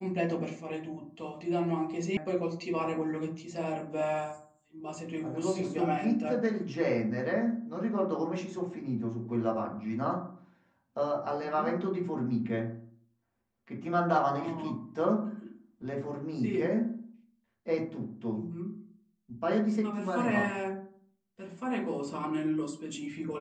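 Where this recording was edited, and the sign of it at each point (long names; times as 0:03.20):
0:02.17: cut off before it has died away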